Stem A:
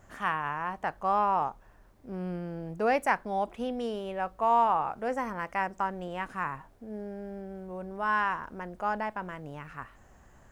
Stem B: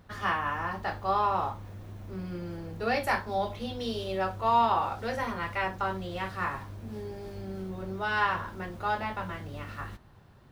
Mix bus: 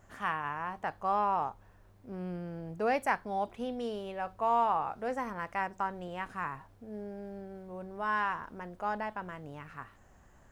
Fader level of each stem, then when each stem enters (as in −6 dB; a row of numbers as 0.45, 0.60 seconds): −3.5, −20.0 decibels; 0.00, 0.00 seconds